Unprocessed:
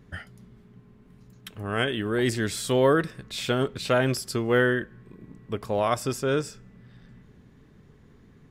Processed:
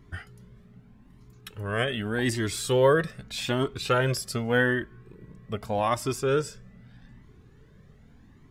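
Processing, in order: cascading flanger rising 0.83 Hz; gain +4 dB

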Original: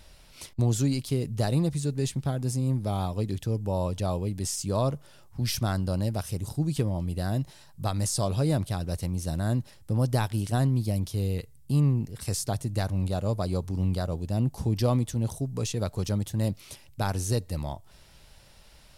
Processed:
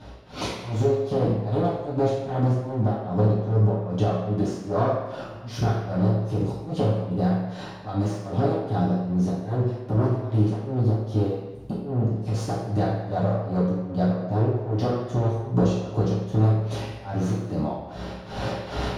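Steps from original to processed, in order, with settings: one-sided fold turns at -27.5 dBFS; recorder AGC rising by 25 dB/s; LPF 3100 Hz 6 dB/oct; compressor, threshold -34 dBFS, peak gain reduction 14 dB; tremolo 2.5 Hz, depth 98%; reverb RT60 1.3 s, pre-delay 3 ms, DRR -11 dB; gain -3 dB

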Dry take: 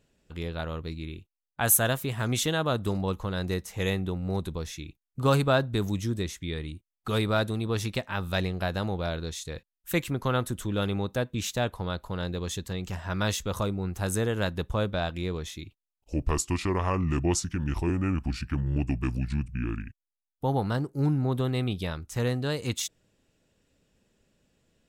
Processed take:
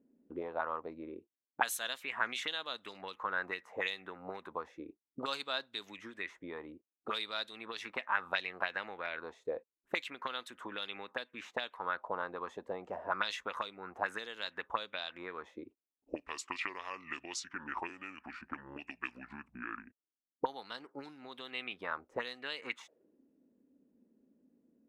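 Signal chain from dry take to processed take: graphic EQ 125/250/500/1000/2000/4000 Hz -8/+9/+6/+6/+6/-3 dB; auto-wah 250–4000 Hz, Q 3, up, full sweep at -18 dBFS

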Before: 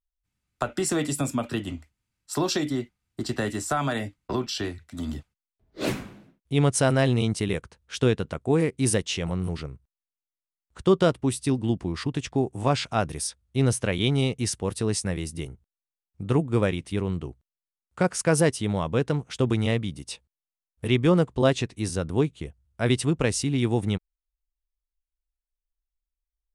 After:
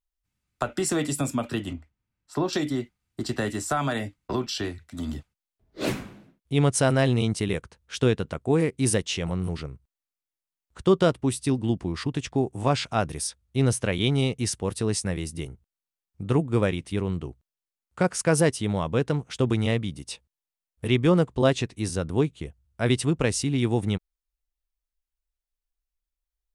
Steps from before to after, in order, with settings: 1.73–2.53 LPF 1600 Hz 6 dB/oct

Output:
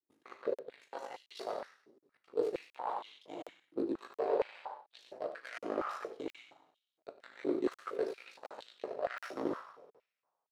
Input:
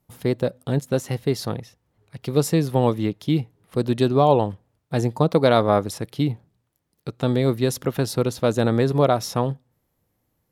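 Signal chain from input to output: tracing distortion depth 0.21 ms; ring modulator 26 Hz; two-slope reverb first 0.81 s, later 2.2 s, from -17 dB, DRR 1 dB; rotary speaker horn 0.6 Hz; echo 93 ms -9.5 dB; power-law curve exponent 1.4; reverse; compressor 10:1, threshold -36 dBFS, peak gain reduction 20 dB; reverse; LPF 11000 Hz 12 dB/oct; high shelf 3800 Hz -10.5 dB; crackling interface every 0.72 s, samples 2048, zero, from 0.54; stepped high-pass 4.3 Hz 320–3300 Hz; gain +1.5 dB

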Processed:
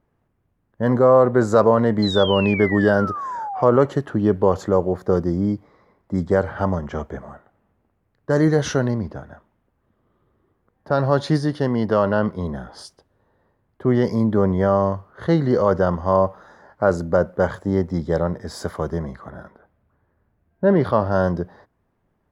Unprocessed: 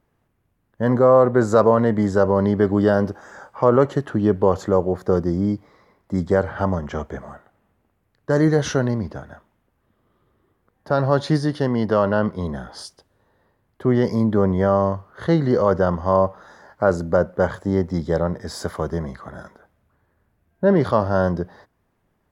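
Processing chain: 2.02–3.65 painted sound fall 690–4200 Hz -28 dBFS; 19.3–21.12 bell 7000 Hz -11 dB 0.87 oct; mismatched tape noise reduction decoder only

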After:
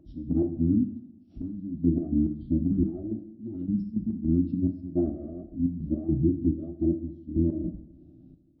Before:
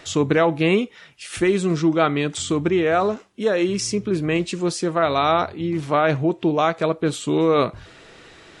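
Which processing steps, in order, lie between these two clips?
elliptic low-pass 540 Hz, stop band 40 dB; limiter -15.5 dBFS, peak gain reduction 7.5 dB; formant-preserving pitch shift -11.5 st; step gate "x.x.xxx..x..." 106 bpm -12 dB; two-slope reverb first 0.69 s, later 2 s, from -19 dB, DRR 5.5 dB

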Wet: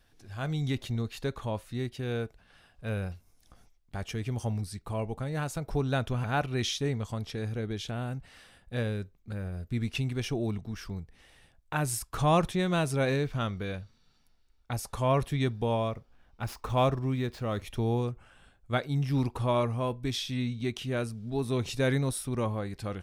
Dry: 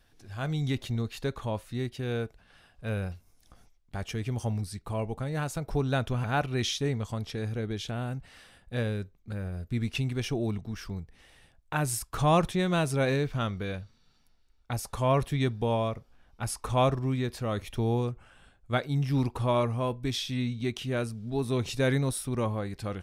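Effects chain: 15.89–17.62 median filter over 5 samples; gain -1 dB

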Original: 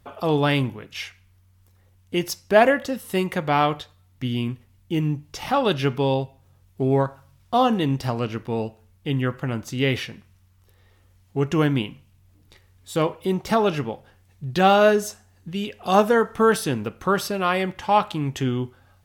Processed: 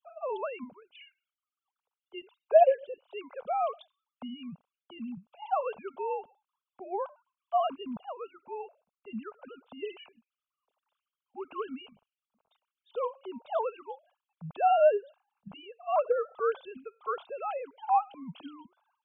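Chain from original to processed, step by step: sine-wave speech; fixed phaser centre 780 Hz, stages 4; gain -6.5 dB

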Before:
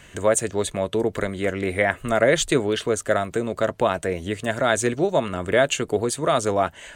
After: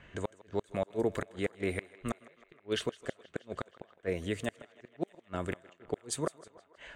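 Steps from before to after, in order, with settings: flipped gate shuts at -12 dBFS, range -40 dB; thinning echo 0.159 s, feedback 75%, high-pass 340 Hz, level -19.5 dB; low-pass opened by the level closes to 2200 Hz, open at -25 dBFS; gain -7 dB

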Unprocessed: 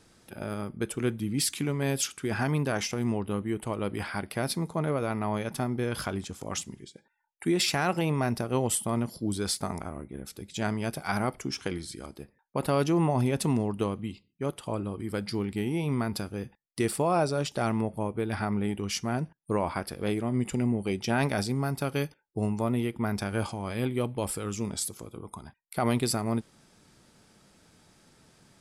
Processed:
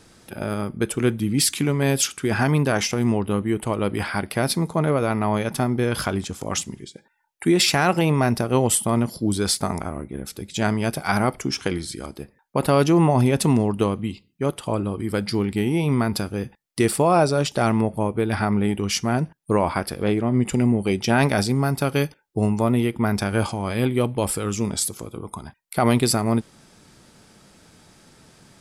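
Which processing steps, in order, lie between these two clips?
20.03–20.47 LPF 3000 Hz 6 dB/oct; gain +8 dB

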